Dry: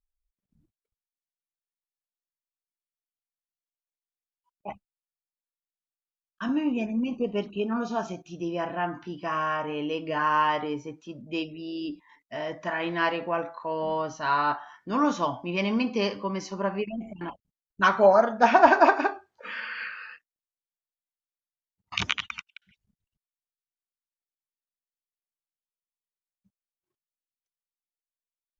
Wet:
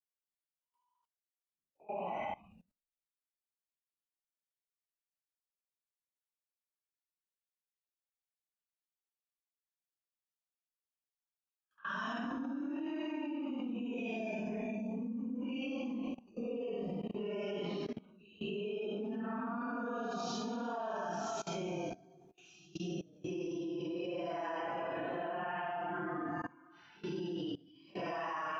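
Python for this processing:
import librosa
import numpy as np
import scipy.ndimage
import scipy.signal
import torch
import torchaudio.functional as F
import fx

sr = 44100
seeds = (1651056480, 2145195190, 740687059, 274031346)

y = fx.paulstretch(x, sr, seeds[0], factor=5.7, window_s=0.05, from_s=4.32)
y = fx.bass_treble(y, sr, bass_db=-7, treble_db=-2)
y = fx.level_steps(y, sr, step_db=22)
y = y * 10.0 ** (5.5 / 20.0)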